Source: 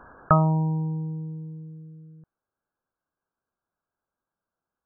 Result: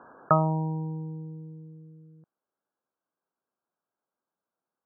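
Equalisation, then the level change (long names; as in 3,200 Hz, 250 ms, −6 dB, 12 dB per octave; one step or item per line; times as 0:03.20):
high-pass filter 200 Hz 12 dB per octave
low-pass filter 1,300 Hz 12 dB per octave
0.0 dB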